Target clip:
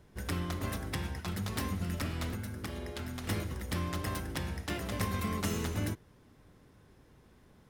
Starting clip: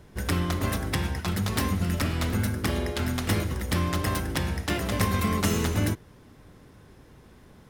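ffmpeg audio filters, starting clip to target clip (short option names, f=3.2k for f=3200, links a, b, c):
-filter_complex "[0:a]asettb=1/sr,asplit=3[a][b][c];[a]atrim=end=2.334[d];[b]atrim=start=2.33:end=3.24,asetpts=PTS-STARTPTS,afade=t=in:d=0.004:c=qsin,afade=t=out:st=0.906:d=0.004:c=qsin,acompressor=threshold=-27dB:ratio=6[e];[c]atrim=start=3.236[f];[d][e]acrossfade=d=0.004:c1=hsin:c2=qsin[g];[g][f]acrossfade=d=0.004:c1=qsin:c2=hsin,volume=-8.5dB"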